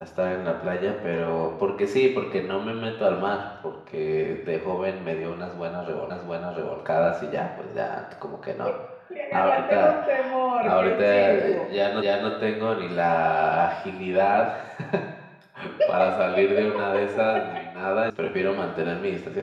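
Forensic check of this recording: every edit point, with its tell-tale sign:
0:06.10: the same again, the last 0.69 s
0:12.02: the same again, the last 0.28 s
0:18.10: cut off before it has died away

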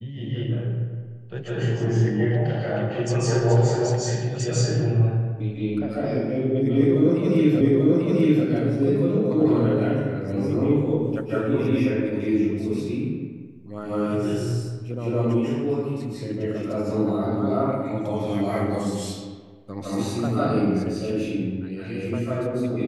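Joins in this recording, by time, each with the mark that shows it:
0:07.61: the same again, the last 0.84 s

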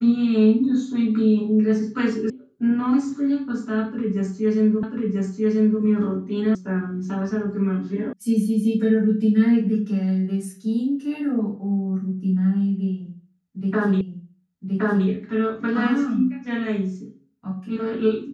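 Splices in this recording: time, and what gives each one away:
0:02.30: cut off before it has died away
0:04.83: the same again, the last 0.99 s
0:06.55: cut off before it has died away
0:08.13: cut off before it has died away
0:14.01: the same again, the last 1.07 s

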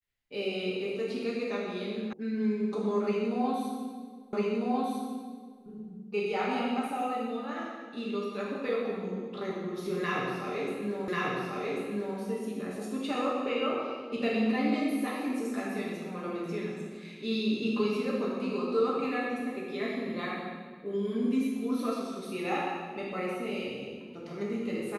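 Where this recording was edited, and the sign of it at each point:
0:02.13: cut off before it has died away
0:04.33: the same again, the last 1.3 s
0:11.08: the same again, the last 1.09 s

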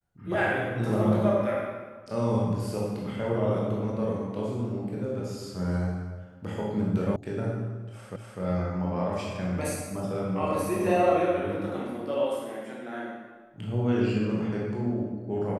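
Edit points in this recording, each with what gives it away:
0:07.16: cut off before it has died away
0:08.16: the same again, the last 0.25 s

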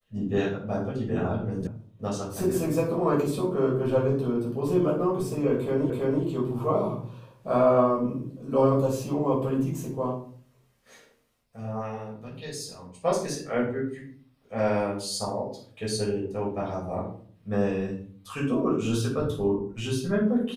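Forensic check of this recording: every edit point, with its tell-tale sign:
0:01.67: cut off before it has died away
0:05.90: the same again, the last 0.33 s

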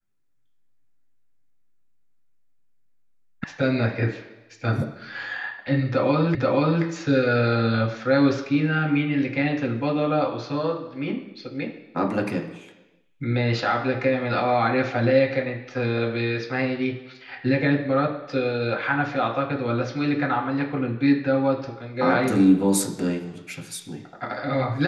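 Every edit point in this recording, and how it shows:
0:03.44: cut off before it has died away
0:06.35: the same again, the last 0.48 s

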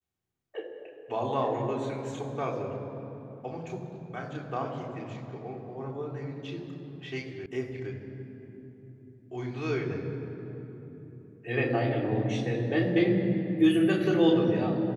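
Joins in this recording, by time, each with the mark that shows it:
0:07.46: cut off before it has died away

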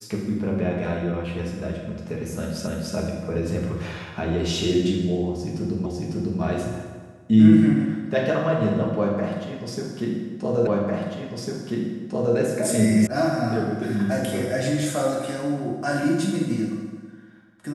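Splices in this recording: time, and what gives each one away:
0:02.67: the same again, the last 0.29 s
0:05.86: the same again, the last 0.55 s
0:10.67: the same again, the last 1.7 s
0:13.07: cut off before it has died away

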